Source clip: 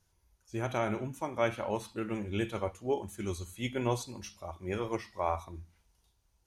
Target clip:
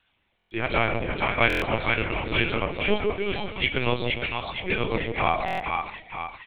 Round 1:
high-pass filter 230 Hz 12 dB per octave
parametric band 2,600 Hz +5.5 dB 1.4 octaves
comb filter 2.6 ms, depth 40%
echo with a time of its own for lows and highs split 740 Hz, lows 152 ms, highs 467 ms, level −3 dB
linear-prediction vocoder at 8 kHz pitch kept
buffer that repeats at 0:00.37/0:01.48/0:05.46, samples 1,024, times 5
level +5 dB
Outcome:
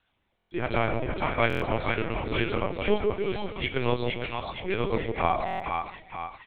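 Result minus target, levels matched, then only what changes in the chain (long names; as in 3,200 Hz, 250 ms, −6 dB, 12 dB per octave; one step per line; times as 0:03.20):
2,000 Hz band −3.5 dB
change: parametric band 2,600 Hz +13 dB 1.4 octaves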